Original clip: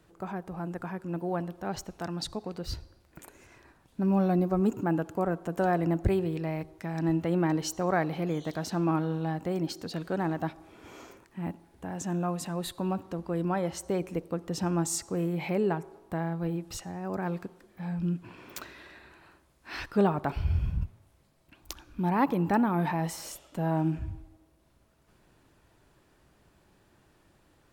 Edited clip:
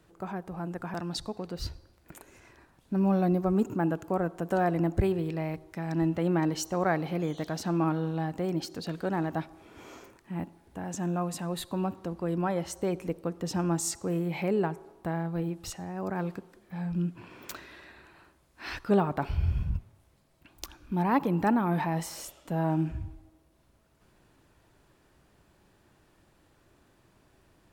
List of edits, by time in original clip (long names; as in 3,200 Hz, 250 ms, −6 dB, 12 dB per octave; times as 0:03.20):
0:00.94–0:02.01: remove